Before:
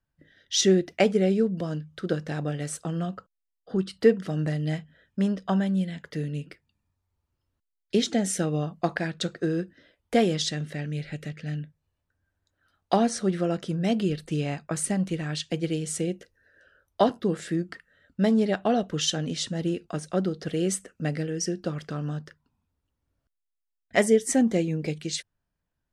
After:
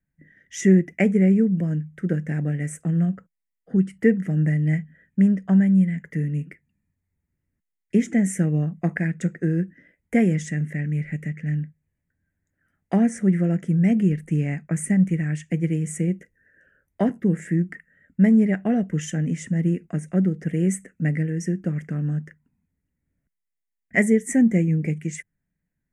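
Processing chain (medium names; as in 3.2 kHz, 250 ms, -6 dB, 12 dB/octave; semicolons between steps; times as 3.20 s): FFT filter 110 Hz 0 dB, 170 Hz +10 dB, 350 Hz 0 dB, 1.2 kHz -11 dB, 2 kHz +8 dB, 4.1 kHz -28 dB, 6.8 kHz -2 dB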